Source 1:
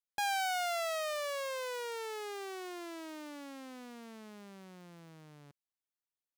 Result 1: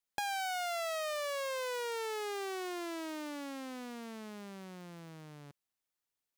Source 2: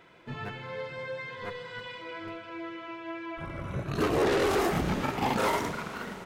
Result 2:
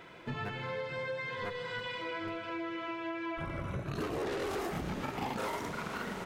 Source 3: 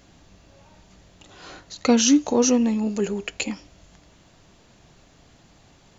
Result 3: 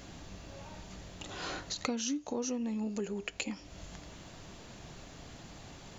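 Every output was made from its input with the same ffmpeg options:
-af "acompressor=threshold=0.0112:ratio=6,volume=1.68"

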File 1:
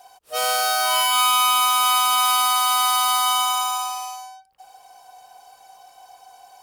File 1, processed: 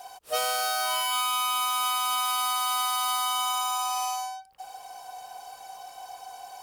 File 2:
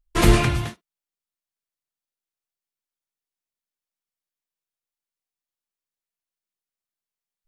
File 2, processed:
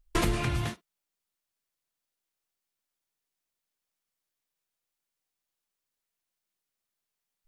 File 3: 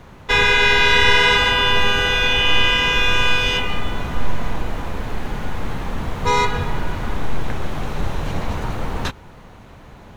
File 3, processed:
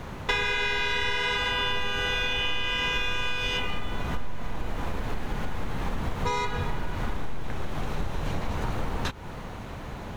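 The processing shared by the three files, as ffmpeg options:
-af "acompressor=threshold=0.0355:ratio=8,volume=1.68"

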